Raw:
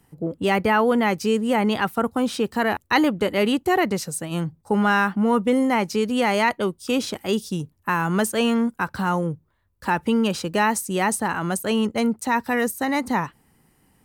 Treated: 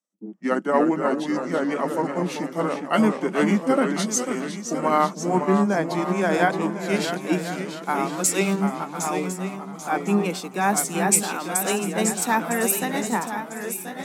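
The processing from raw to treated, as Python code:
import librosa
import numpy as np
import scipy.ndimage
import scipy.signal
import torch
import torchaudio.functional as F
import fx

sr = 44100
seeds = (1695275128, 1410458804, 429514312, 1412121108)

y = fx.pitch_glide(x, sr, semitones=-7.5, runs='ending unshifted')
y = scipy.signal.sosfilt(scipy.signal.ellip(4, 1.0, 40, 190.0, 'highpass', fs=sr, output='sos'), y)
y = fx.peak_eq(y, sr, hz=13000.0, db=7.0, octaves=1.2)
y = y + 10.0 ** (-20.0 / 20.0) * np.pad(y, (int(434 * sr / 1000.0), 0))[:len(y)]
y = fx.echo_pitch(y, sr, ms=270, semitones=-1, count=3, db_per_echo=-6.0)
y = y + 10.0 ** (-9.0 / 20.0) * np.pad(y, (int(1055 * sr / 1000.0), 0))[:len(y)]
y = fx.band_widen(y, sr, depth_pct=70)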